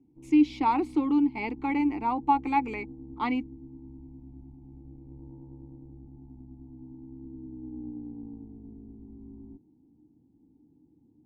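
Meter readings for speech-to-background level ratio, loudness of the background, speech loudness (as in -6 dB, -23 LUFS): 18.5 dB, -45.5 LUFS, -27.0 LUFS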